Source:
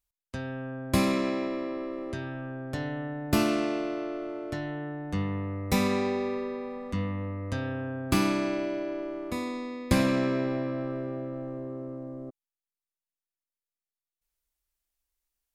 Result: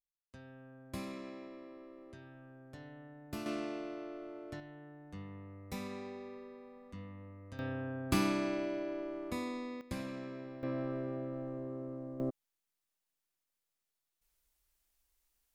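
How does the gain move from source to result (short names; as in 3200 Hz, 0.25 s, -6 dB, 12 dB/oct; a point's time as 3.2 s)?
-18 dB
from 3.46 s -11 dB
from 4.6 s -17 dB
from 7.59 s -6 dB
from 9.81 s -17.5 dB
from 10.63 s -5 dB
from 12.2 s +5.5 dB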